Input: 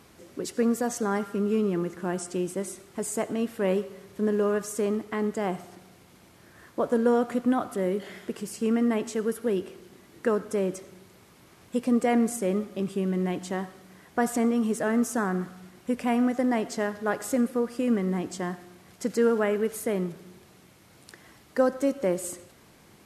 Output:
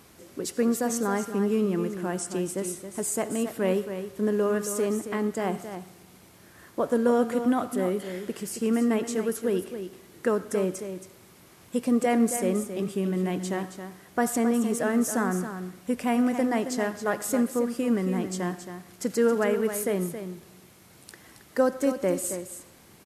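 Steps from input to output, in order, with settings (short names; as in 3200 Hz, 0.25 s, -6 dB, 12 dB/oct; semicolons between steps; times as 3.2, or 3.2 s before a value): high shelf 7900 Hz +7.5 dB; echo 0.272 s -9.5 dB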